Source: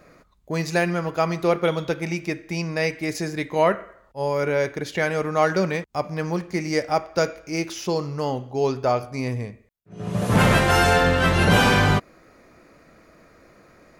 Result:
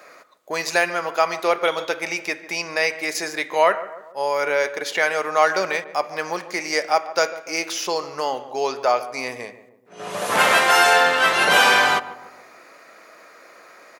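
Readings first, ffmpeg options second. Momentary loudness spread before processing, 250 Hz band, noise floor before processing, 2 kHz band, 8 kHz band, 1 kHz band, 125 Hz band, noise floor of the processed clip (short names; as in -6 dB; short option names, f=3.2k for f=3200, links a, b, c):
12 LU, -9.5 dB, -55 dBFS, +5.5 dB, +6.0 dB, +4.5 dB, -20.5 dB, -48 dBFS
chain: -filter_complex "[0:a]highpass=670,asplit=2[a][b];[b]acompressor=threshold=-38dB:ratio=6,volume=-2dB[c];[a][c]amix=inputs=2:normalize=0,asplit=2[d][e];[e]adelay=146,lowpass=f=1.1k:p=1,volume=-14dB,asplit=2[f][g];[g]adelay=146,lowpass=f=1.1k:p=1,volume=0.54,asplit=2[h][i];[i]adelay=146,lowpass=f=1.1k:p=1,volume=0.54,asplit=2[j][k];[k]adelay=146,lowpass=f=1.1k:p=1,volume=0.54,asplit=2[l][m];[m]adelay=146,lowpass=f=1.1k:p=1,volume=0.54[n];[d][f][h][j][l][n]amix=inputs=6:normalize=0,volume=4.5dB"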